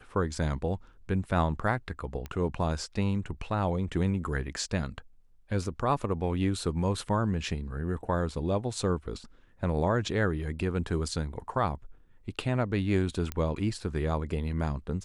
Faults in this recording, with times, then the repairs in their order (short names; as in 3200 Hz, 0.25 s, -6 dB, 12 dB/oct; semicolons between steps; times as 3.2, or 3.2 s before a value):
2.26 pop -24 dBFS
13.32 pop -17 dBFS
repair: de-click